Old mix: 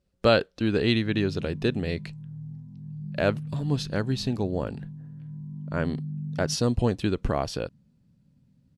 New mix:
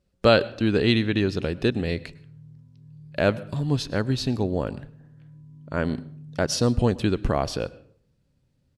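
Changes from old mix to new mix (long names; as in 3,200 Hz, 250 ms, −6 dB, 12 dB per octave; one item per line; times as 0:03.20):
background: add phaser with its sweep stopped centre 750 Hz, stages 6
reverb: on, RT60 0.60 s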